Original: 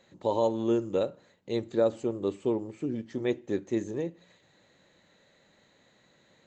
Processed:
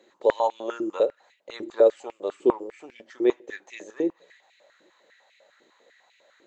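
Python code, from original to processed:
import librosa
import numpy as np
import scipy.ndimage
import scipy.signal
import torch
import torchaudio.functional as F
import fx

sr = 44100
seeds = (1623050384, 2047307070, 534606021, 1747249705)

y = fx.filter_held_highpass(x, sr, hz=10.0, low_hz=340.0, high_hz=2400.0)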